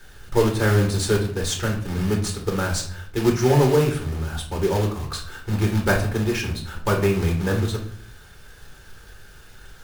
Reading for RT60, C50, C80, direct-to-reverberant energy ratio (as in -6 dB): 0.60 s, 7.5 dB, 12.5 dB, 0.0 dB